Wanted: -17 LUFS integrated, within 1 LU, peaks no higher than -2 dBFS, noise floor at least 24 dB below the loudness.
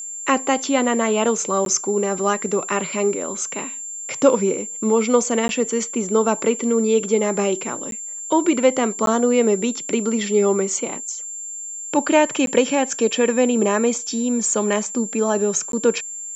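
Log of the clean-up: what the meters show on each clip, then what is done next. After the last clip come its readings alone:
dropouts 6; longest dropout 12 ms; steady tone 7.3 kHz; tone level -29 dBFS; loudness -20.0 LUFS; peak level -2.5 dBFS; loudness target -17.0 LUFS
-> interpolate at 1.65/5.48/7.91/9.06/12.46/15.72 s, 12 ms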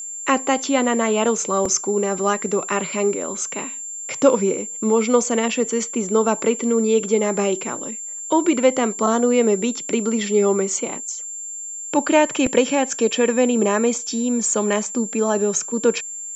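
dropouts 0; steady tone 7.3 kHz; tone level -29 dBFS
-> band-stop 7.3 kHz, Q 30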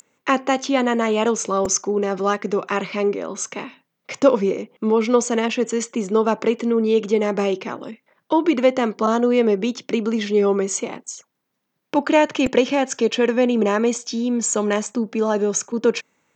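steady tone not found; loudness -20.5 LUFS; peak level -3.0 dBFS; loudness target -17.0 LUFS
-> trim +3.5 dB; peak limiter -2 dBFS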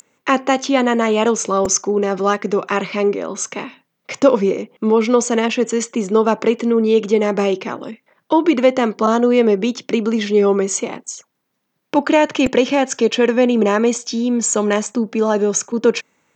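loudness -17.0 LUFS; peak level -2.0 dBFS; noise floor -73 dBFS

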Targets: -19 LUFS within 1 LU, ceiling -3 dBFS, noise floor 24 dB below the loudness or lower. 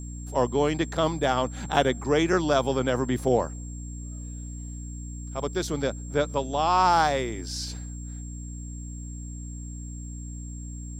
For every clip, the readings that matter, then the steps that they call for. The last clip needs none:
hum 60 Hz; highest harmonic 300 Hz; hum level -34 dBFS; steady tone 7.5 kHz; tone level -45 dBFS; loudness -25.5 LUFS; peak level -5.0 dBFS; loudness target -19.0 LUFS
-> de-hum 60 Hz, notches 5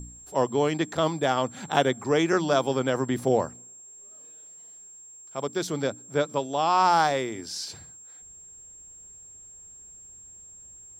hum not found; steady tone 7.5 kHz; tone level -45 dBFS
-> band-stop 7.5 kHz, Q 30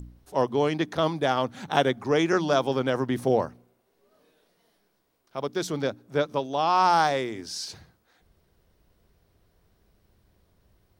steady tone not found; loudness -26.0 LUFS; peak level -5.0 dBFS; loudness target -19.0 LUFS
-> trim +7 dB; peak limiter -3 dBFS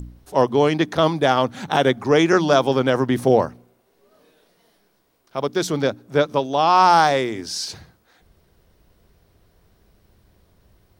loudness -19.0 LUFS; peak level -3.0 dBFS; noise floor -63 dBFS

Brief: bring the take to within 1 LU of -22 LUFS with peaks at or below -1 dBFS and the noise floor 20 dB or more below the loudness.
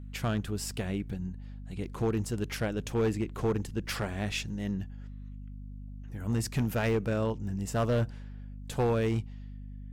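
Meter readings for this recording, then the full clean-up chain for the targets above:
clipped samples 1.4%; clipping level -22.0 dBFS; hum 50 Hz; highest harmonic 250 Hz; hum level -40 dBFS; loudness -32.0 LUFS; peak level -22.0 dBFS; loudness target -22.0 LUFS
-> clip repair -22 dBFS; de-hum 50 Hz, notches 5; trim +10 dB

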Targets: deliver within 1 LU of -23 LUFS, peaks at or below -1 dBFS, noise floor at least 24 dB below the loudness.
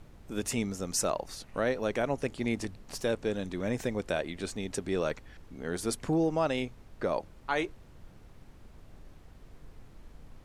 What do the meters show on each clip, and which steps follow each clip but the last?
noise floor -54 dBFS; noise floor target -57 dBFS; loudness -33.0 LUFS; peak level -16.0 dBFS; loudness target -23.0 LUFS
-> noise print and reduce 6 dB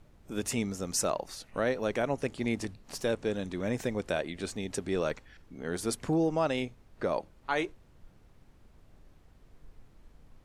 noise floor -60 dBFS; loudness -33.0 LUFS; peak level -16.0 dBFS; loudness target -23.0 LUFS
-> trim +10 dB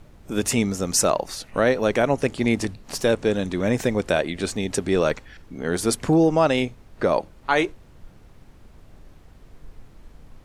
loudness -23.0 LUFS; peak level -6.0 dBFS; noise floor -50 dBFS

